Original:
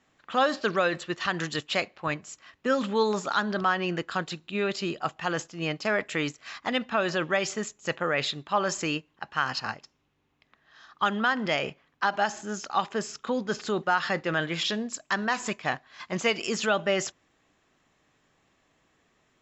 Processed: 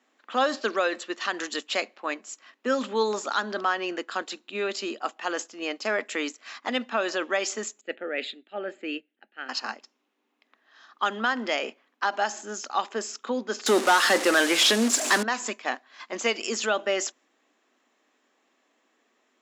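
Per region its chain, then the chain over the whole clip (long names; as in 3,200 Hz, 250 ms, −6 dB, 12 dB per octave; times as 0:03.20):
0:07.81–0:09.49: high-shelf EQ 3,900 Hz −11 dB + phaser with its sweep stopped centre 2,500 Hz, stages 4 + multiband upward and downward expander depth 100%
0:13.66–0:15.23: linear delta modulator 64 kbit/s, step −34.5 dBFS + leveller curve on the samples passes 3
whole clip: elliptic high-pass filter 230 Hz, stop band 40 dB; dynamic equaliser 7,100 Hz, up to +5 dB, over −48 dBFS, Q 1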